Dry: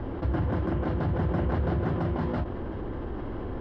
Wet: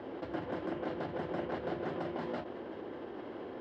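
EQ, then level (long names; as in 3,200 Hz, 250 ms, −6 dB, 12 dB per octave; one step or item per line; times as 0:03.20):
high-pass filter 630 Hz 12 dB per octave
parametric band 1,100 Hz −14.5 dB 2.1 octaves
high-shelf EQ 3,100 Hz −11 dB
+8.5 dB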